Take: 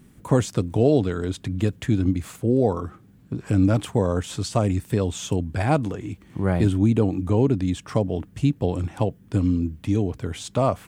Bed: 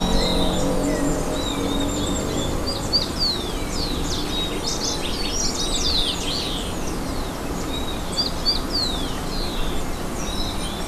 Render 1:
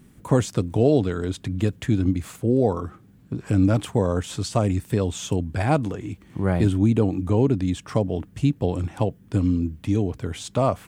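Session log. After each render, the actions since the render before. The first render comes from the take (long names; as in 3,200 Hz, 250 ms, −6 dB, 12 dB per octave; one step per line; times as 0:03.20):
no processing that can be heard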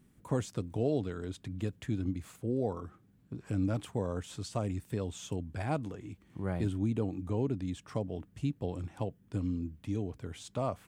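level −12.5 dB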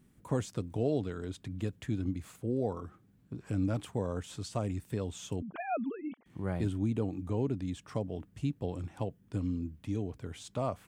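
0:05.42–0:06.26: three sine waves on the formant tracks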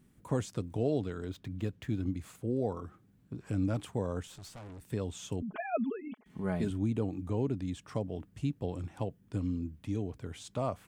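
0:01.29–0:02.02: running median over 5 samples
0:04.27–0:04.81: tube saturation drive 45 dB, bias 0.65
0:05.42–0:06.70: comb filter 4.7 ms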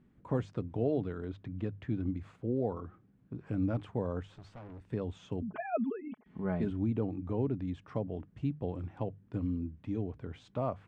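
Bessel low-pass filter 1,900 Hz, order 2
mains-hum notches 50/100/150 Hz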